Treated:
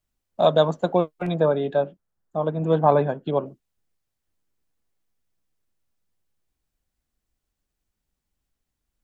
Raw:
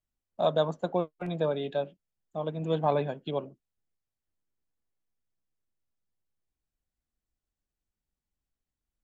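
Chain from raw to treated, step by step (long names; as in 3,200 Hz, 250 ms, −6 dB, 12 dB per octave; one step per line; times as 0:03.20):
0:01.34–0:03.46: high shelf with overshoot 1,900 Hz −7 dB, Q 1.5
level +8 dB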